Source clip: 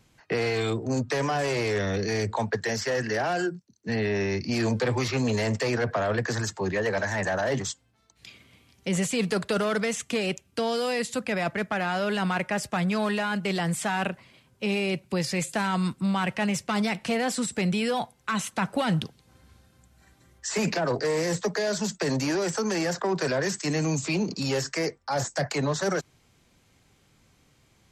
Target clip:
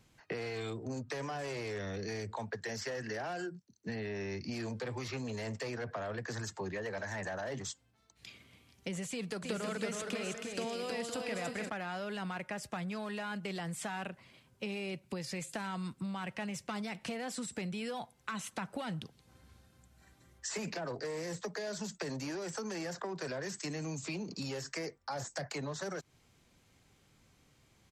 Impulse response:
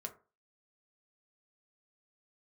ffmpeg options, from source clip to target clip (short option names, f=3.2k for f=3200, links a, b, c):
-filter_complex "[0:a]acompressor=threshold=-32dB:ratio=6,asplit=3[a][b][c];[a]afade=t=out:st=9.42:d=0.02[d];[b]aecho=1:1:320|512|627.2|696.3|737.8:0.631|0.398|0.251|0.158|0.1,afade=t=in:st=9.42:d=0.02,afade=t=out:st=11.68:d=0.02[e];[c]afade=t=in:st=11.68:d=0.02[f];[d][e][f]amix=inputs=3:normalize=0,volume=-4.5dB"